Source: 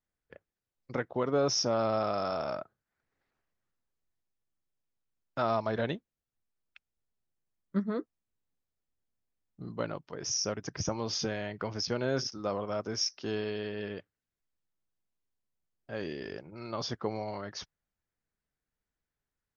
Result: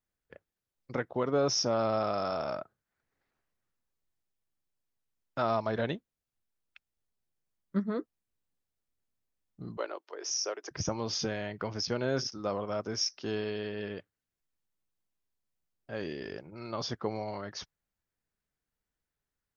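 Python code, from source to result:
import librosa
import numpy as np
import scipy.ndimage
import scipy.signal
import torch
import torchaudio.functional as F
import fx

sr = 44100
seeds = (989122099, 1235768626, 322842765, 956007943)

y = fx.ellip_highpass(x, sr, hz=350.0, order=4, stop_db=70, at=(9.77, 10.71))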